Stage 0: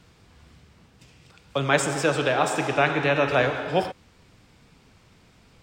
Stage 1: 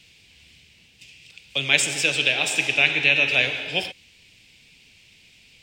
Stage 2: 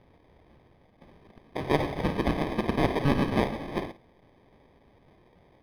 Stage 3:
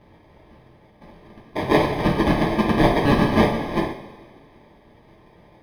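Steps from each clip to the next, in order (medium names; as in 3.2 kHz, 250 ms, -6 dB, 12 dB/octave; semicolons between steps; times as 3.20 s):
resonant high shelf 1.8 kHz +12.5 dB, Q 3; trim -7 dB
sample-rate reducer 1.4 kHz, jitter 0%; boxcar filter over 6 samples; flutter echo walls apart 9.3 m, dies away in 0.23 s; trim -5.5 dB
reverberation, pre-delay 3 ms, DRR -3.5 dB; trim +3.5 dB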